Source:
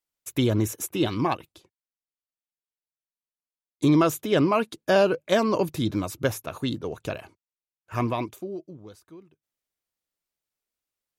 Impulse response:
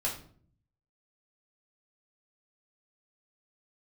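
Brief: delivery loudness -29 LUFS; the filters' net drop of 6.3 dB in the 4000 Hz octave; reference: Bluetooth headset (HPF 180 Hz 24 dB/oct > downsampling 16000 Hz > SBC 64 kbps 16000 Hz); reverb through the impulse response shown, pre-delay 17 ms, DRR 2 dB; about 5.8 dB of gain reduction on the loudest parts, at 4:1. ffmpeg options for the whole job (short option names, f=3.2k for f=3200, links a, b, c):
-filter_complex "[0:a]equalizer=f=4k:t=o:g=-8.5,acompressor=threshold=-22dB:ratio=4,asplit=2[a][b];[1:a]atrim=start_sample=2205,adelay=17[c];[b][c]afir=irnorm=-1:irlink=0,volume=-7dB[d];[a][d]amix=inputs=2:normalize=0,highpass=f=180:w=0.5412,highpass=f=180:w=1.3066,aresample=16000,aresample=44100,volume=-1dB" -ar 16000 -c:a sbc -b:a 64k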